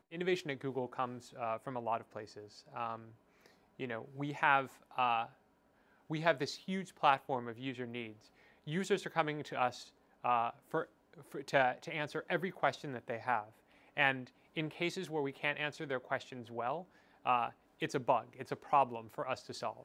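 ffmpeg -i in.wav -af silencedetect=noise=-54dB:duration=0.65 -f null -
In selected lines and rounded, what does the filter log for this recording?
silence_start: 5.33
silence_end: 6.10 | silence_duration: 0.77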